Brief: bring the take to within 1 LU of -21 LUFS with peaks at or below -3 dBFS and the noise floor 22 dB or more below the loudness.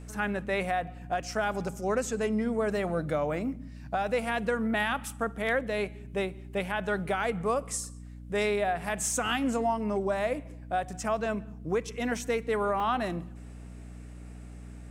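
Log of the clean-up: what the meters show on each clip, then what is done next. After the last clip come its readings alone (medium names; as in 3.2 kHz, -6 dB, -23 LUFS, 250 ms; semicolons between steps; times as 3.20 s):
dropouts 1; longest dropout 2.4 ms; hum 60 Hz; highest harmonic 300 Hz; hum level -42 dBFS; loudness -30.5 LUFS; peak level -17.0 dBFS; loudness target -21.0 LUFS
-> interpolate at 12.80 s, 2.4 ms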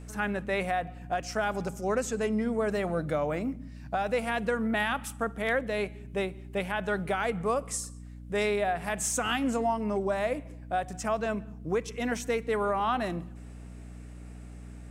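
dropouts 0; hum 60 Hz; highest harmonic 300 Hz; hum level -42 dBFS
-> de-hum 60 Hz, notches 5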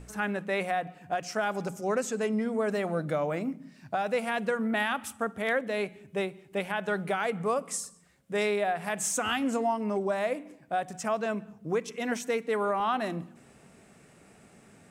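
hum not found; loudness -30.5 LUFS; peak level -17.0 dBFS; loudness target -21.0 LUFS
-> trim +9.5 dB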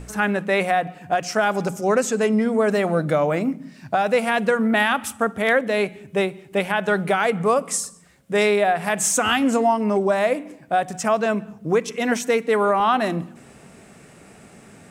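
loudness -21.0 LUFS; peak level -7.5 dBFS; noise floor -48 dBFS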